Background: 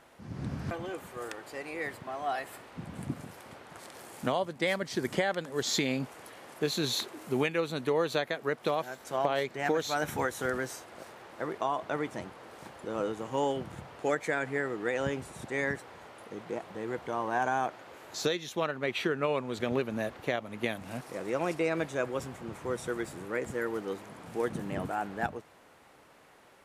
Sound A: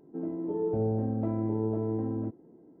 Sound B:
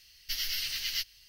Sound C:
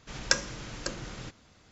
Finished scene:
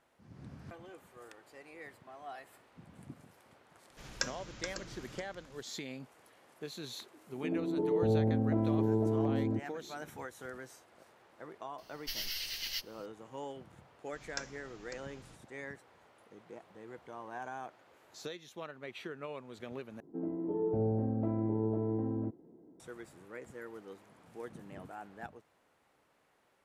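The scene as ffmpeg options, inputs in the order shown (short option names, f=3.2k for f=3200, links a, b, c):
-filter_complex "[3:a]asplit=2[a][b];[1:a]asplit=2[c][d];[0:a]volume=-13.5dB[e];[a]aecho=1:1:426:0.398[f];[e]asplit=2[g][h];[g]atrim=end=20.004[i];[d]atrim=end=2.8,asetpts=PTS-STARTPTS,volume=-3dB[j];[h]atrim=start=22.796[k];[f]atrim=end=1.71,asetpts=PTS-STARTPTS,volume=-10dB,afade=t=in:d=0.004:c=hsin,afade=t=out:st=1.706:d=0.004:c=hsin,adelay=3900[l];[c]atrim=end=2.8,asetpts=PTS-STARTPTS,afade=t=in:d=0.004:c=hsin,afade=t=out:st=2.796:d=0.004:c=hsin,adelay=7290[m];[2:a]atrim=end=1.28,asetpts=PTS-STARTPTS,volume=-5.5dB,afade=t=in:d=0.004:c=hsin,afade=t=out:st=1.276:d=0.004:c=hsin,adelay=519498S[n];[b]atrim=end=1.71,asetpts=PTS-STARTPTS,volume=-16dB,afade=t=in:d=0.004:c=hsin,afade=t=out:st=1.706:d=0.004:c=hsin,adelay=14060[o];[i][j]acrossfade=d=0.004:c1=hsin:c2=hsin[p];[p][k]acrossfade=d=0.004:c1=hsin:c2=hsin[q];[q][l][m][n][o]amix=inputs=5:normalize=0"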